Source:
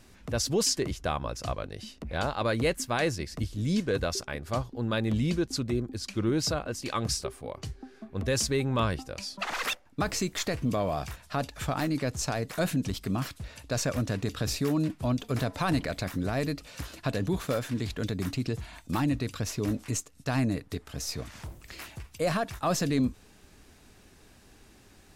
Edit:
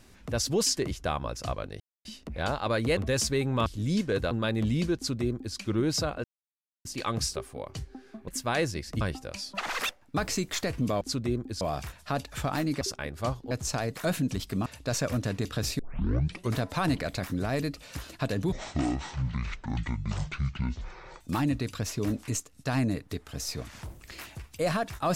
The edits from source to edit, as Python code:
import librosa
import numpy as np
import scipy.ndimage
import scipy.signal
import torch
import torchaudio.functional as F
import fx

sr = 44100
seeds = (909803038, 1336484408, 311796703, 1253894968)

y = fx.edit(x, sr, fx.insert_silence(at_s=1.8, length_s=0.25),
    fx.swap(start_s=2.72, length_s=0.73, other_s=8.16, other_length_s=0.69),
    fx.move(start_s=4.1, length_s=0.7, to_s=12.05),
    fx.duplicate(start_s=5.45, length_s=0.6, to_s=10.85),
    fx.insert_silence(at_s=6.73, length_s=0.61),
    fx.cut(start_s=13.2, length_s=0.3),
    fx.tape_start(start_s=14.63, length_s=0.77),
    fx.speed_span(start_s=17.36, length_s=1.45, speed=0.54), tone=tone)